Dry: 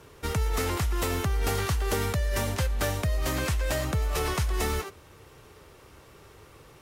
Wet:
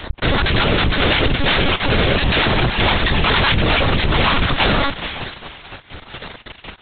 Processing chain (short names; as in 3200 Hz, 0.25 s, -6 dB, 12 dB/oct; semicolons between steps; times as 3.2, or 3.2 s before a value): random spectral dropouts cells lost 35%; 0.66–2.47 fixed phaser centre 420 Hz, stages 4; fuzz box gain 50 dB, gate -47 dBFS; thin delay 0.436 s, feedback 31%, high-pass 2900 Hz, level -6 dB; careless resampling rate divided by 8×, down none, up zero stuff; monotone LPC vocoder at 8 kHz 280 Hz; gain -1.5 dB